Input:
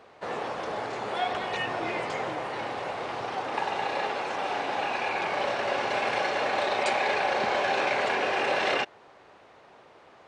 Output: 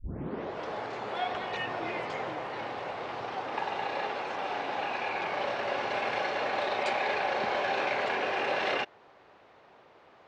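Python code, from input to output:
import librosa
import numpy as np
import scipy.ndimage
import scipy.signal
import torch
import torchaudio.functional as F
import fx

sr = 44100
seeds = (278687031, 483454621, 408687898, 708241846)

y = fx.tape_start_head(x, sr, length_s=0.67)
y = scipy.signal.sosfilt(scipy.signal.butter(2, 5300.0, 'lowpass', fs=sr, output='sos'), y)
y = y * 10.0 ** (-3.5 / 20.0)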